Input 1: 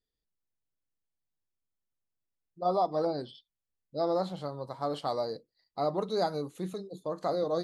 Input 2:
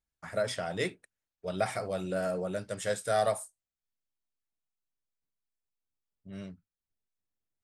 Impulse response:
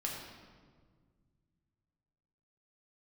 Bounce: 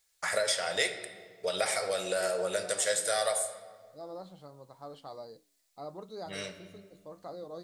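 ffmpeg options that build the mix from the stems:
-filter_complex "[0:a]flanger=delay=5:depth=3.9:regen=-89:speed=0.81:shape=triangular,acontrast=84,volume=0.168[s0];[1:a]bass=f=250:g=-6,treble=f=4000:g=15,acompressor=threshold=0.00794:ratio=3,equalizer=f=125:t=o:w=1:g=-3,equalizer=f=250:t=o:w=1:g=-6,equalizer=f=500:t=o:w=1:g=8,equalizer=f=1000:t=o:w=1:g=4,equalizer=f=2000:t=o:w=1:g=10,equalizer=f=4000:t=o:w=1:g=7,equalizer=f=8000:t=o:w=1:g=4,volume=1.06,asplit=3[s1][s2][s3];[s2]volume=0.631[s4];[s3]apad=whole_len=336698[s5];[s0][s5]sidechaincompress=threshold=0.0126:ratio=8:attack=16:release=1140[s6];[2:a]atrim=start_sample=2205[s7];[s4][s7]afir=irnorm=-1:irlink=0[s8];[s6][s1][s8]amix=inputs=3:normalize=0,asoftclip=type=hard:threshold=0.141"

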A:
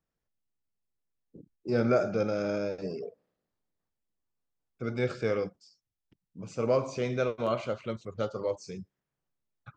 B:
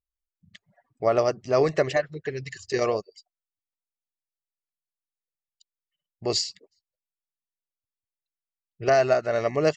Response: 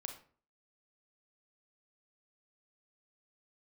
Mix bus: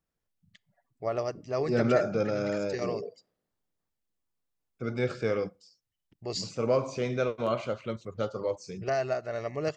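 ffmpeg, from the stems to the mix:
-filter_complex "[0:a]volume=1,asplit=2[s0][s1];[s1]volume=0.075[s2];[1:a]equalizer=f=120:t=o:w=0.77:g=4,volume=0.316,asplit=2[s3][s4];[s4]volume=0.133[s5];[2:a]atrim=start_sample=2205[s6];[s2][s5]amix=inputs=2:normalize=0[s7];[s7][s6]afir=irnorm=-1:irlink=0[s8];[s0][s3][s8]amix=inputs=3:normalize=0"

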